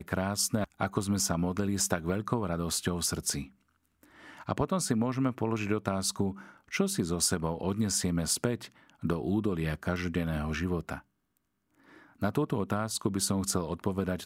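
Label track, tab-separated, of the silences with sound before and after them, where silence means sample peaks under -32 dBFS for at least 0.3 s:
3.420000	4.490000	silence
6.310000	6.730000	silence
8.650000	9.030000	silence
10.950000	12.220000	silence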